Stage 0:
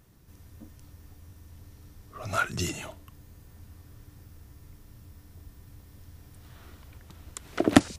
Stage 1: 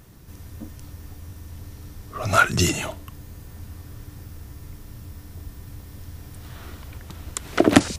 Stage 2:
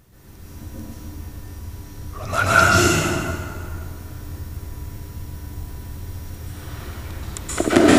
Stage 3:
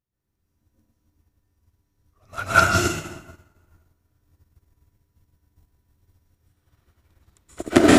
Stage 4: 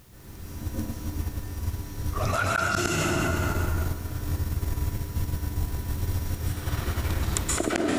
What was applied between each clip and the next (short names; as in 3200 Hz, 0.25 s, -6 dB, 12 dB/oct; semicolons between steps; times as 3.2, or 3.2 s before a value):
maximiser +11.5 dB; gain -1 dB
in parallel at -2 dB: vocal rider; on the sum: plate-style reverb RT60 2.1 s, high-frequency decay 0.65×, pre-delay 0.115 s, DRR -9.5 dB; gain -9 dB
upward expander 2.5:1, over -34 dBFS; gain +1.5 dB
flipped gate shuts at -8 dBFS, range -37 dB; fast leveller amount 100%; gain -5 dB